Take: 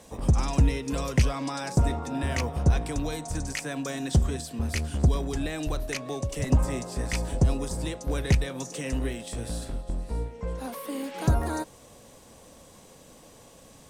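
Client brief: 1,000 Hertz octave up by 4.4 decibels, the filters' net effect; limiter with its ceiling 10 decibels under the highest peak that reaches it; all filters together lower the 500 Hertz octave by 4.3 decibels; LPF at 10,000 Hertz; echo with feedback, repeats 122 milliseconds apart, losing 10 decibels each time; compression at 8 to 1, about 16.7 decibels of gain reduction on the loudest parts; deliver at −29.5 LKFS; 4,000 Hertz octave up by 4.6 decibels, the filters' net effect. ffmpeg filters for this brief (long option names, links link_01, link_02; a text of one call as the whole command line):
ffmpeg -i in.wav -af "lowpass=10000,equalizer=frequency=500:width_type=o:gain=-8,equalizer=frequency=1000:width_type=o:gain=8,equalizer=frequency=4000:width_type=o:gain=5.5,acompressor=threshold=-34dB:ratio=8,alimiter=level_in=6dB:limit=-24dB:level=0:latency=1,volume=-6dB,aecho=1:1:122|244|366|488:0.316|0.101|0.0324|0.0104,volume=11dB" out.wav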